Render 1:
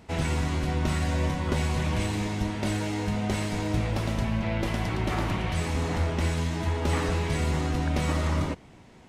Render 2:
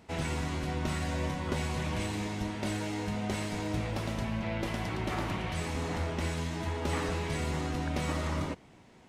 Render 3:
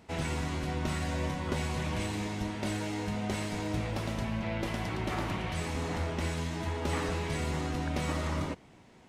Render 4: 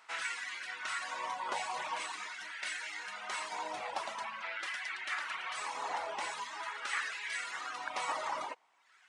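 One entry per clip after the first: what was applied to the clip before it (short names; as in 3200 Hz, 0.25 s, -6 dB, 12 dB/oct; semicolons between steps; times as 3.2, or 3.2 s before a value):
low shelf 100 Hz -6.5 dB; gain -4 dB
nothing audible
downsampling 22050 Hz; LFO high-pass sine 0.45 Hz 840–1700 Hz; reverb removal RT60 0.93 s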